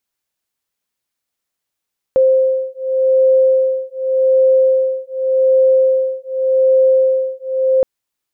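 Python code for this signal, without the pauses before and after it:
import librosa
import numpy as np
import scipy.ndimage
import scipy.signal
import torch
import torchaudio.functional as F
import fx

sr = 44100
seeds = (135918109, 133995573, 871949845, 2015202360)

y = fx.two_tone_beats(sr, length_s=5.67, hz=524.0, beat_hz=0.86, level_db=-13.5)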